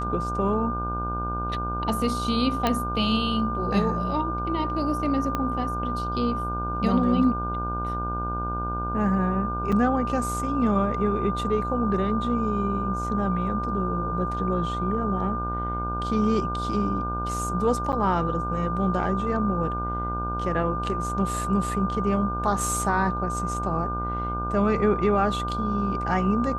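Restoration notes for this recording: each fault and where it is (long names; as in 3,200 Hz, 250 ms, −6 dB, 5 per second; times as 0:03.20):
mains buzz 60 Hz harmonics 26 −31 dBFS
whistle 1,200 Hz −29 dBFS
0:02.67: click −9 dBFS
0:05.35: click −13 dBFS
0:09.72–0:09.73: drop-out 5.2 ms
0:17.92–0:17.93: drop-out 8.9 ms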